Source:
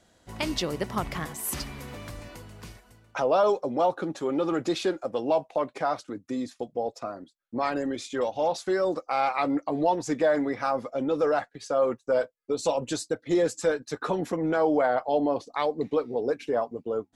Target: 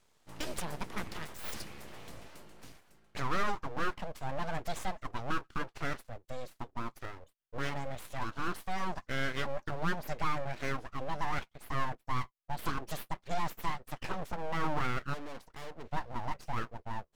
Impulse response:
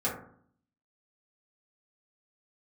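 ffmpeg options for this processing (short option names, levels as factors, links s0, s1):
-filter_complex "[0:a]asplit=3[s0][s1][s2];[s0]afade=t=out:st=15.13:d=0.02[s3];[s1]aeval=exprs='(tanh(44.7*val(0)+0.65)-tanh(0.65))/44.7':c=same,afade=t=in:st=15.13:d=0.02,afade=t=out:st=15.85:d=0.02[s4];[s2]afade=t=in:st=15.85:d=0.02[s5];[s3][s4][s5]amix=inputs=3:normalize=0,aeval=exprs='abs(val(0))':c=same,volume=0.501"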